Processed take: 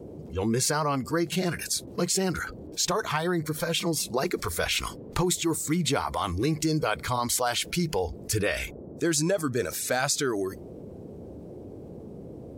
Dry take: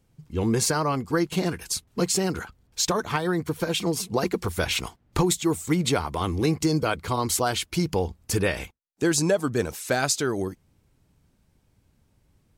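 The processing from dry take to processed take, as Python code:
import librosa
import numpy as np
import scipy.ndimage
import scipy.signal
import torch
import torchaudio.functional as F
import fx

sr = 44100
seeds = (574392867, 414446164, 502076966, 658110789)

y = fx.noise_reduce_blind(x, sr, reduce_db=12)
y = fx.dmg_noise_band(y, sr, seeds[0], low_hz=59.0, high_hz=490.0, level_db=-57.0)
y = fx.env_flatten(y, sr, amount_pct=50)
y = y * 10.0 ** (-4.5 / 20.0)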